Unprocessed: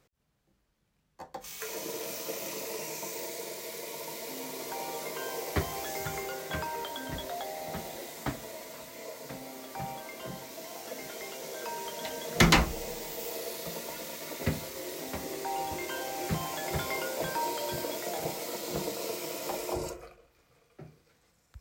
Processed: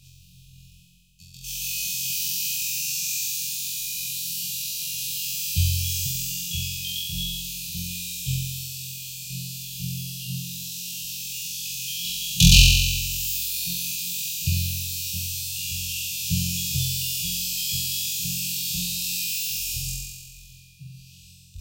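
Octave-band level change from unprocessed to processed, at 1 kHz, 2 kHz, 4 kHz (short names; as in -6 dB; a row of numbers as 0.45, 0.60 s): under -40 dB, +4.0 dB, +13.5 dB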